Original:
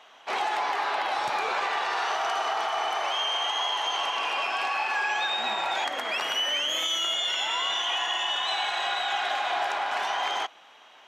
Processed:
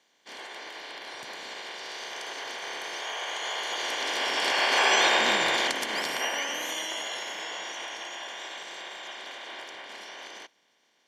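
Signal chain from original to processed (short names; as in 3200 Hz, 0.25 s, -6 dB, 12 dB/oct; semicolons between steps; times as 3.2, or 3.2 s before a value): spectral limiter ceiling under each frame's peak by 21 dB; Doppler pass-by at 5.04, 13 m/s, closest 5.9 m; notch comb 1300 Hz; gain +7.5 dB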